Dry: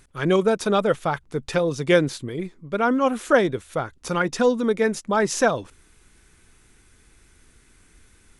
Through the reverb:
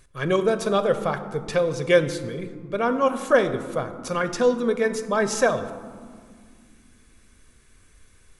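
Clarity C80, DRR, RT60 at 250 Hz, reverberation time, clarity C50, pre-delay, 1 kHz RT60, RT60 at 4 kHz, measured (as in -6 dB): 12.5 dB, 9.0 dB, 3.5 s, 2.1 s, 11.5 dB, 4 ms, 2.0 s, 0.80 s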